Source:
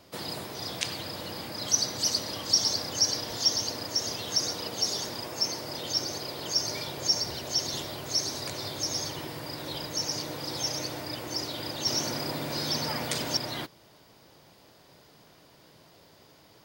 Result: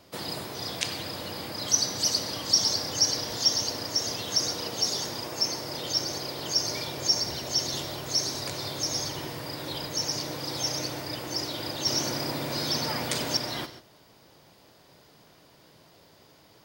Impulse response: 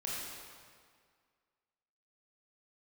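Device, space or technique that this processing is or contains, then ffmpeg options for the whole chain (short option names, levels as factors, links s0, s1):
keyed gated reverb: -filter_complex "[0:a]asplit=3[s0][s1][s2];[1:a]atrim=start_sample=2205[s3];[s1][s3]afir=irnorm=-1:irlink=0[s4];[s2]apad=whole_len=734075[s5];[s4][s5]sidechaingate=range=0.0224:threshold=0.00282:ratio=16:detection=peak,volume=0.266[s6];[s0][s6]amix=inputs=2:normalize=0"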